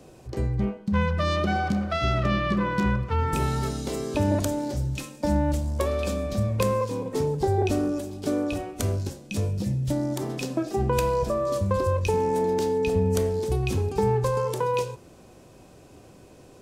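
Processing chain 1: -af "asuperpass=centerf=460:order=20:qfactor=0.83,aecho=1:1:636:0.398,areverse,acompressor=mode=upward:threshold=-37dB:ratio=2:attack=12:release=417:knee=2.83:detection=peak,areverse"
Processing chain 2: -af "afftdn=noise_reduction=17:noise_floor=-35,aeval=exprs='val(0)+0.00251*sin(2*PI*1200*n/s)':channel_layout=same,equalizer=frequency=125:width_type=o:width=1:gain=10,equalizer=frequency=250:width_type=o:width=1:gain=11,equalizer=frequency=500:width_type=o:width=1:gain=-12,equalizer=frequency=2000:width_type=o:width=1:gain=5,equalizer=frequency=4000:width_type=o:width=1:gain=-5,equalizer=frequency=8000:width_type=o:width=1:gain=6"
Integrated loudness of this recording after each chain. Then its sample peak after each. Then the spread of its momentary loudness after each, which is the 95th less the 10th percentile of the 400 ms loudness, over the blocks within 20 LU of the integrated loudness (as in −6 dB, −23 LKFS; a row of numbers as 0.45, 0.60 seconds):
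−29.0, −20.0 LKFS; −13.0, −5.0 dBFS; 12, 7 LU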